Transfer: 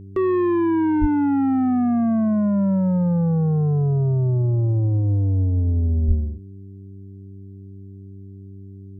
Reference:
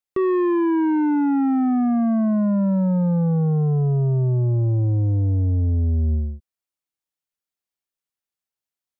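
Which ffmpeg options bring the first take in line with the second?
-filter_complex "[0:a]bandreject=f=97.5:t=h:w=4,bandreject=f=195:t=h:w=4,bandreject=f=292.5:t=h:w=4,bandreject=f=390:t=h:w=4,asplit=3[s0][s1][s2];[s0]afade=t=out:st=1:d=0.02[s3];[s1]highpass=f=140:w=0.5412,highpass=f=140:w=1.3066,afade=t=in:st=1:d=0.02,afade=t=out:st=1.12:d=0.02[s4];[s2]afade=t=in:st=1.12:d=0.02[s5];[s3][s4][s5]amix=inputs=3:normalize=0,asplit=3[s6][s7][s8];[s6]afade=t=out:st=6.07:d=0.02[s9];[s7]highpass=f=140:w=0.5412,highpass=f=140:w=1.3066,afade=t=in:st=6.07:d=0.02,afade=t=out:st=6.19:d=0.02[s10];[s8]afade=t=in:st=6.19:d=0.02[s11];[s9][s10][s11]amix=inputs=3:normalize=0"

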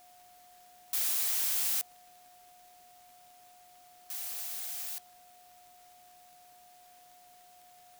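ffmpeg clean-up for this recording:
-af "adeclick=t=4,bandreject=f=720:w=30,afftdn=nr=22:nf=-58"

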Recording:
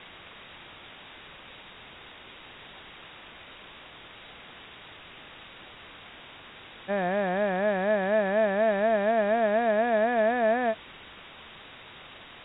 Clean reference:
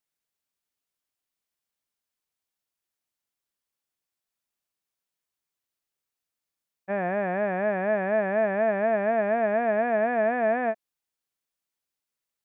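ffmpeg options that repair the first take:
-af "afwtdn=0.01"

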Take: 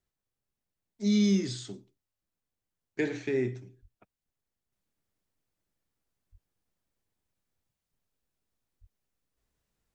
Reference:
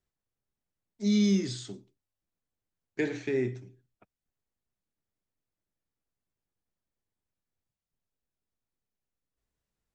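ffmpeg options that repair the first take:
-filter_complex "[0:a]asplit=3[s0][s1][s2];[s0]afade=t=out:st=3.81:d=0.02[s3];[s1]highpass=f=140:w=0.5412,highpass=f=140:w=1.3066,afade=t=in:st=3.81:d=0.02,afade=t=out:st=3.93:d=0.02[s4];[s2]afade=t=in:st=3.93:d=0.02[s5];[s3][s4][s5]amix=inputs=3:normalize=0,asplit=3[s6][s7][s8];[s6]afade=t=out:st=6.31:d=0.02[s9];[s7]highpass=f=140:w=0.5412,highpass=f=140:w=1.3066,afade=t=in:st=6.31:d=0.02,afade=t=out:st=6.43:d=0.02[s10];[s8]afade=t=in:st=6.43:d=0.02[s11];[s9][s10][s11]amix=inputs=3:normalize=0,asplit=3[s12][s13][s14];[s12]afade=t=out:st=8.8:d=0.02[s15];[s13]highpass=f=140:w=0.5412,highpass=f=140:w=1.3066,afade=t=in:st=8.8:d=0.02,afade=t=out:st=8.92:d=0.02[s16];[s14]afade=t=in:st=8.92:d=0.02[s17];[s15][s16][s17]amix=inputs=3:normalize=0,asetnsamples=n=441:p=0,asendcmd='4.72 volume volume -5dB',volume=1"

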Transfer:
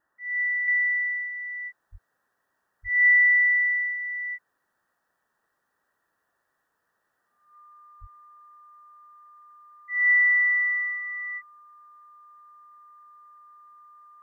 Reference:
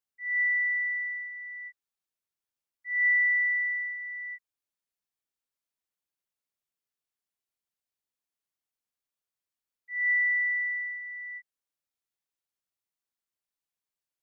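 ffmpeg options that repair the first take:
-filter_complex "[0:a]bandreject=f=1200:w=30,asplit=3[s0][s1][s2];[s0]afade=t=out:st=1.91:d=0.02[s3];[s1]highpass=f=140:w=0.5412,highpass=f=140:w=1.3066,afade=t=in:st=1.91:d=0.02,afade=t=out:st=2.03:d=0.02[s4];[s2]afade=t=in:st=2.03:d=0.02[s5];[s3][s4][s5]amix=inputs=3:normalize=0,asplit=3[s6][s7][s8];[s6]afade=t=out:st=2.82:d=0.02[s9];[s7]highpass=f=140:w=0.5412,highpass=f=140:w=1.3066,afade=t=in:st=2.82:d=0.02,afade=t=out:st=2.94:d=0.02[s10];[s8]afade=t=in:st=2.94:d=0.02[s11];[s9][s10][s11]amix=inputs=3:normalize=0,asplit=3[s12][s13][s14];[s12]afade=t=out:st=8:d=0.02[s15];[s13]highpass=f=140:w=0.5412,highpass=f=140:w=1.3066,afade=t=in:st=8:d=0.02,afade=t=out:st=8.12:d=0.02[s16];[s14]afade=t=in:st=8.12:d=0.02[s17];[s15][s16][s17]amix=inputs=3:normalize=0,agate=range=0.0891:threshold=0.000355,asetnsamples=n=441:p=0,asendcmd='0.68 volume volume -6dB',volume=1"

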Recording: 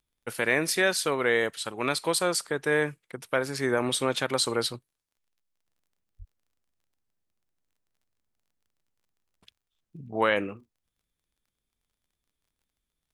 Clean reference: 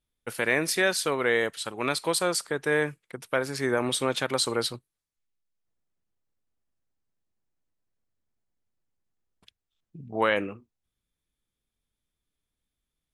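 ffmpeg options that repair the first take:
-filter_complex "[0:a]adeclick=t=4,asplit=3[s0][s1][s2];[s0]afade=t=out:st=6.18:d=0.02[s3];[s1]highpass=f=140:w=0.5412,highpass=f=140:w=1.3066,afade=t=in:st=6.18:d=0.02,afade=t=out:st=6.3:d=0.02[s4];[s2]afade=t=in:st=6.3:d=0.02[s5];[s3][s4][s5]amix=inputs=3:normalize=0"

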